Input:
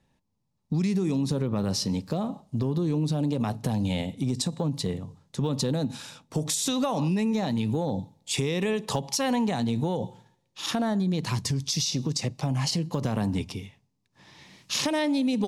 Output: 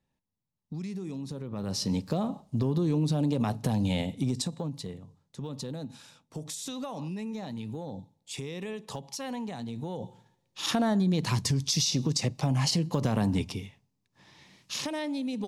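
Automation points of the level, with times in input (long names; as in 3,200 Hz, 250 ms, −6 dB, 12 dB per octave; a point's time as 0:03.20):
0:01.44 −11 dB
0:01.92 −0.5 dB
0:04.21 −0.5 dB
0:04.94 −10.5 dB
0:09.73 −10.5 dB
0:10.63 +0.5 dB
0:13.42 +0.5 dB
0:14.95 −7.5 dB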